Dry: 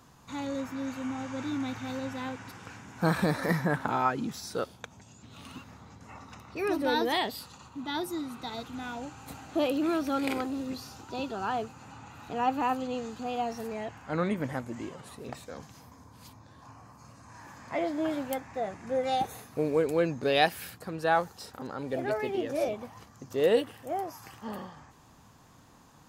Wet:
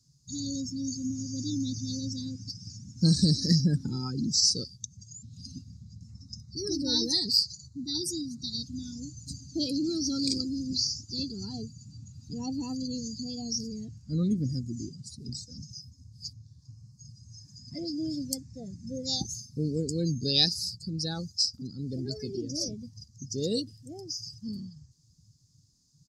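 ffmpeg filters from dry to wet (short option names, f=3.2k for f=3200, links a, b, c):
-filter_complex "[0:a]asettb=1/sr,asplit=3[a][b][c];[a]atrim=end=6.114[d];[b]atrim=start=6.11:end=8.62,asetpts=PTS-STARTPTS,afade=t=in:d=0.004:c=qsin,afade=t=out:st=2.506:d=0.004:c=qsin,asuperstop=centerf=2900:order=8:qfactor=2.1[e];[c]atrim=start=8.616[f];[d][e]acrossfade=d=0.004:c1=hsin:c2=qsin[g];[g][f]acrossfade=d=0.004:c1=qsin:c2=hsin,firequalizer=gain_entry='entry(140,0);entry(660,-27);entry(3000,-13);entry(4800,15);entry(9700,2);entry(14000,-6)':delay=0.05:min_phase=1,afftdn=nr=21:nf=-42,volume=8dB"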